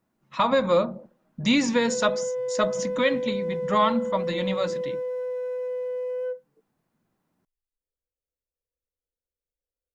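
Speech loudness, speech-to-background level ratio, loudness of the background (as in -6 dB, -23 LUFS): -25.0 LUFS, 5.5 dB, -30.5 LUFS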